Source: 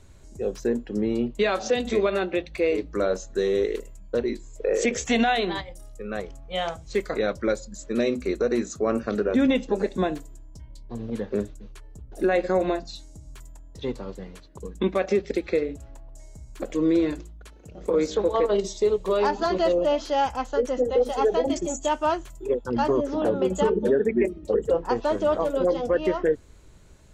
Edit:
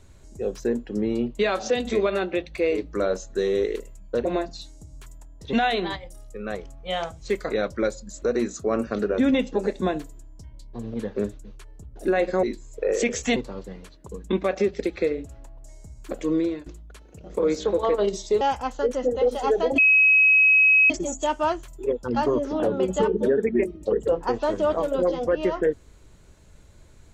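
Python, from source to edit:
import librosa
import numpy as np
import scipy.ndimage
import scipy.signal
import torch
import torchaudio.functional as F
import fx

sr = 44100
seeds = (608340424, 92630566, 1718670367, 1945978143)

y = fx.edit(x, sr, fx.swap(start_s=4.25, length_s=0.93, other_s=12.59, other_length_s=1.28),
    fx.cut(start_s=7.87, length_s=0.51),
    fx.fade_out_to(start_s=16.81, length_s=0.36, floor_db=-17.0),
    fx.cut(start_s=18.92, length_s=1.23),
    fx.insert_tone(at_s=21.52, length_s=1.12, hz=2550.0, db=-13.0), tone=tone)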